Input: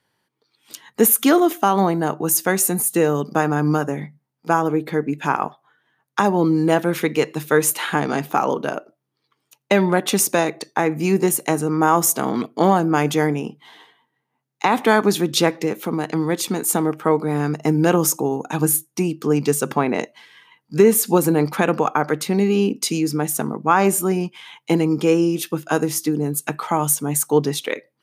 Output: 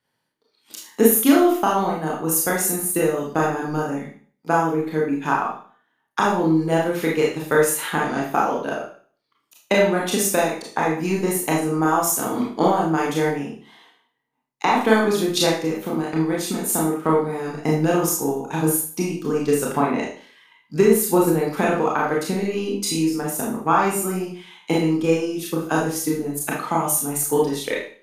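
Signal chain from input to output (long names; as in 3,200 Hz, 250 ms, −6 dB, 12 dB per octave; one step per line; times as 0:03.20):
transient designer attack +6 dB, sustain −1 dB
four-comb reverb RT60 0.45 s, combs from 25 ms, DRR −3.5 dB
level −8.5 dB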